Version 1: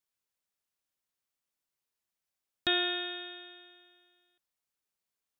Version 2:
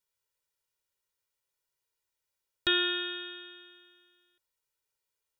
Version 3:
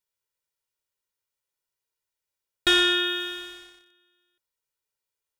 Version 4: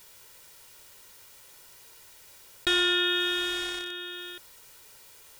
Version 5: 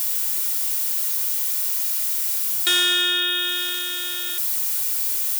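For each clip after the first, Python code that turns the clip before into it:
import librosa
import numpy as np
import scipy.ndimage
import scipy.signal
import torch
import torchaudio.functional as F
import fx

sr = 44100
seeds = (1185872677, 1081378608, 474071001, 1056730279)

y1 = x + 0.82 * np.pad(x, (int(2.1 * sr / 1000.0), 0))[:len(x)]
y2 = fx.leveller(y1, sr, passes=2)
y2 = y2 * 10.0 ** (2.0 / 20.0)
y3 = fx.env_flatten(y2, sr, amount_pct=70)
y3 = y3 * 10.0 ** (-5.5 / 20.0)
y4 = y3 + 0.5 * 10.0 ** (-33.5 / 20.0) * np.sign(y3)
y4 = fx.riaa(y4, sr, side='recording')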